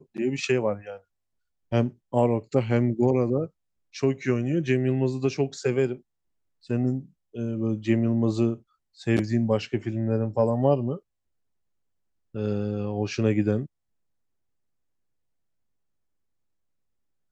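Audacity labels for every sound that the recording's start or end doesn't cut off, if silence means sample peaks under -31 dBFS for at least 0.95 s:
12.350000	13.650000	sound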